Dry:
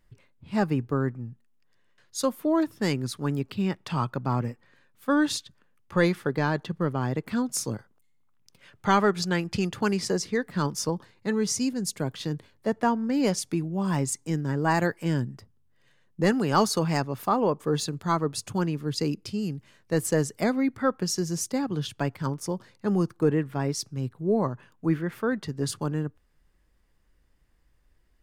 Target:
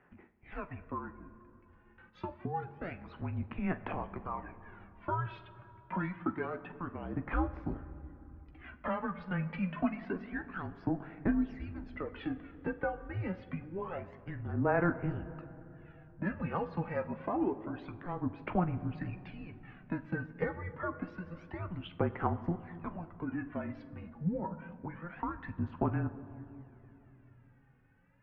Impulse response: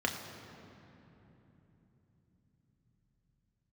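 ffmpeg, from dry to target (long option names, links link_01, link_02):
-filter_complex "[0:a]acompressor=threshold=-35dB:ratio=6,aphaser=in_gain=1:out_gain=1:delay=3:decay=0.71:speed=0.27:type=sinusoidal,asplit=2[link_01][link_02];[1:a]atrim=start_sample=2205,adelay=14[link_03];[link_02][link_03]afir=irnorm=-1:irlink=0,volume=-14.5dB[link_04];[link_01][link_04]amix=inputs=2:normalize=0,highpass=frequency=320:width_type=q:width=0.5412,highpass=frequency=320:width_type=q:width=1.307,lowpass=frequency=2600:width_type=q:width=0.5176,lowpass=frequency=2600:width_type=q:width=0.7071,lowpass=frequency=2600:width_type=q:width=1.932,afreqshift=-180,volume=2dB"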